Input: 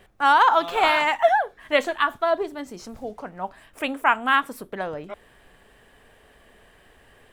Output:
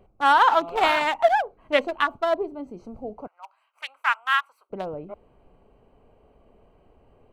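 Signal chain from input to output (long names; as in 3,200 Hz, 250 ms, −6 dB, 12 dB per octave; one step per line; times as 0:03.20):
adaptive Wiener filter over 25 samples
0:03.27–0:04.70: high-pass filter 1,100 Hz 24 dB per octave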